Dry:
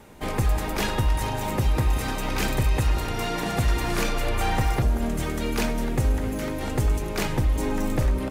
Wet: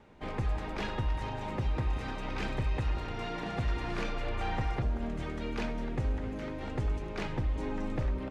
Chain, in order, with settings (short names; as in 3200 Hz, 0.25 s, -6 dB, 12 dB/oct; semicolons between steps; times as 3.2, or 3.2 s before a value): LPF 3700 Hz 12 dB/oct; gain -9 dB